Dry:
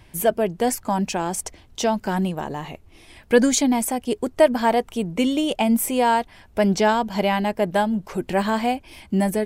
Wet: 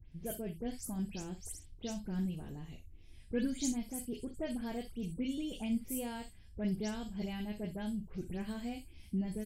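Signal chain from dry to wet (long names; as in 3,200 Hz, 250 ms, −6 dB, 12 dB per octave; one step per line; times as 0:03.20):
every frequency bin delayed by itself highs late, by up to 118 ms
guitar amp tone stack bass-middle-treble 10-0-1
on a send: ambience of single reflections 38 ms −11.5 dB, 62 ms −13.5 dB
on the sum: level +3.5 dB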